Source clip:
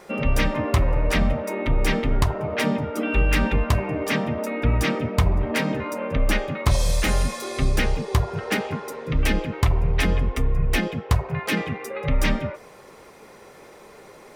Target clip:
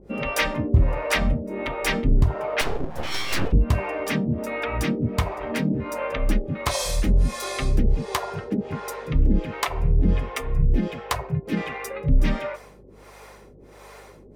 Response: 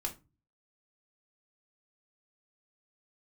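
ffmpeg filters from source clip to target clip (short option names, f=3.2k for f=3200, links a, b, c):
-filter_complex "[0:a]acrossover=split=420[a][b];[a]aeval=exprs='val(0)*(1-1/2+1/2*cos(2*PI*1.4*n/s))':c=same[c];[b]aeval=exprs='val(0)*(1-1/2-1/2*cos(2*PI*1.4*n/s))':c=same[d];[c][d]amix=inputs=2:normalize=0,aeval=exprs='val(0)+0.00158*(sin(2*PI*50*n/s)+sin(2*PI*2*50*n/s)/2+sin(2*PI*3*50*n/s)/3+sin(2*PI*4*50*n/s)/4+sin(2*PI*5*50*n/s)/5)':c=same,asettb=1/sr,asplit=3[e][f][g];[e]atrim=end=2.614[h];[f]atrim=start=2.61:end=3.53,asetpts=PTS-STARTPTS,afade=t=in:d=0.004:c=qsin,afade=t=out:st=0.916:d=0.004:c=qsin,aeval=exprs='abs(val(0))':c=same[i];[g]atrim=start=3.526[j];[h][i]acrossfade=d=0.004:c1=hsin:c2=qsin[k];[k][j]acrossfade=d=0.004:c1=qsin:c2=hsin,volume=4dB"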